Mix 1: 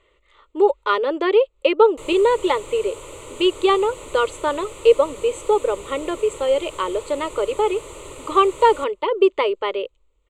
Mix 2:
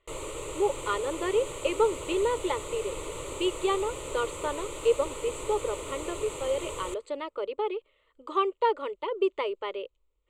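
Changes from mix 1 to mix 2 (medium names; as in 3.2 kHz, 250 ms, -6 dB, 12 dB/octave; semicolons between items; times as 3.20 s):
speech -10.5 dB; background: entry -1.90 s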